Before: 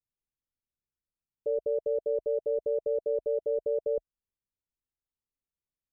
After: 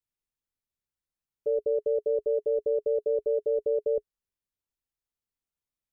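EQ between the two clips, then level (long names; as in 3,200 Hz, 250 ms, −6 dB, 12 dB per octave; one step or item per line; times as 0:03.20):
dynamic equaliser 420 Hz, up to +7 dB, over −46 dBFS, Q 6.9
0.0 dB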